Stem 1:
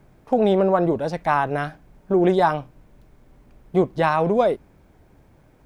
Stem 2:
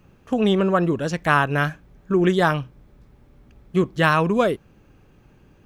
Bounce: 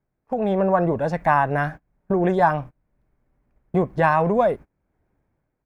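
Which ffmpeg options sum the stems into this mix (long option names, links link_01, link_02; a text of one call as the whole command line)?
ffmpeg -i stem1.wav -i stem2.wav -filter_complex "[0:a]acompressor=threshold=-49dB:ratio=1.5,volume=2.5dB[link_01];[1:a]equalizer=frequency=2000:width=1.3:gain=-7.5,adelay=1,volume=-17dB[link_02];[link_01][link_02]amix=inputs=2:normalize=0,agate=range=-27dB:threshold=-42dB:ratio=16:detection=peak,highshelf=frequency=2600:width_type=q:width=1.5:gain=-7,dynaudnorm=framelen=130:gausssize=7:maxgain=9dB" out.wav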